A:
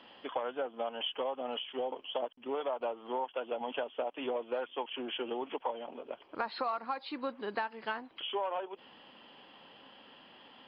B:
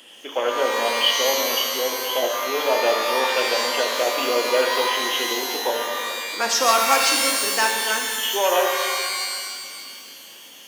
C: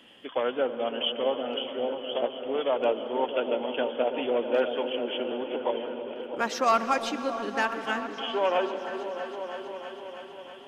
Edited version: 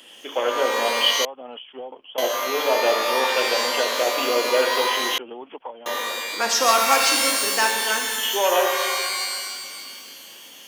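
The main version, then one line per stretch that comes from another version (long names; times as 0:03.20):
B
0:01.25–0:02.18: punch in from A
0:05.18–0:05.86: punch in from A
not used: C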